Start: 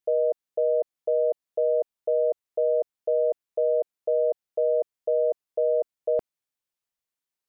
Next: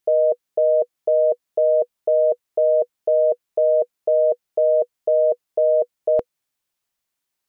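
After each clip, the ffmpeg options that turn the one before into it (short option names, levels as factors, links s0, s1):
-af "bandreject=f=490:w=12,volume=2.66"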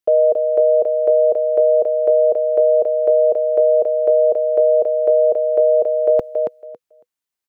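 -filter_complex "[0:a]agate=range=0.316:threshold=0.00891:ratio=16:detection=peak,acrossover=split=130[s0][s1];[s0]acrusher=bits=3:mode=log:mix=0:aa=0.000001[s2];[s1]aecho=1:1:277|554|831:0.562|0.09|0.0144[s3];[s2][s3]amix=inputs=2:normalize=0,volume=1.5"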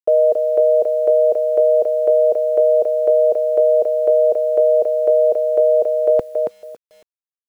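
-af "acrusher=bits=8:mix=0:aa=0.000001"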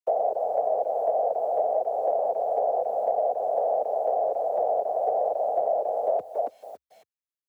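-filter_complex "[0:a]afftfilt=real='hypot(re,im)*cos(2*PI*random(0))':imag='hypot(re,im)*sin(2*PI*random(1))':win_size=512:overlap=0.75,afreqshift=63,acrossover=split=360|920[s0][s1][s2];[s0]acompressor=threshold=0.00355:ratio=4[s3];[s1]acompressor=threshold=0.0708:ratio=4[s4];[s2]acompressor=threshold=0.00891:ratio=4[s5];[s3][s4][s5]amix=inputs=3:normalize=0"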